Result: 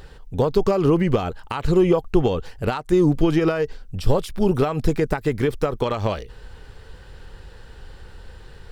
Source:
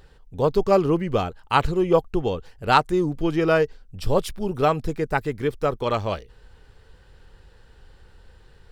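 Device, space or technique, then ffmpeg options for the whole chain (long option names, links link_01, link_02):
de-esser from a sidechain: -filter_complex "[0:a]asplit=2[link_01][link_02];[link_02]highpass=frequency=6800:poles=1,apad=whole_len=384329[link_03];[link_01][link_03]sidechaincompress=threshold=-44dB:ratio=8:attack=2.5:release=91,volume=9dB"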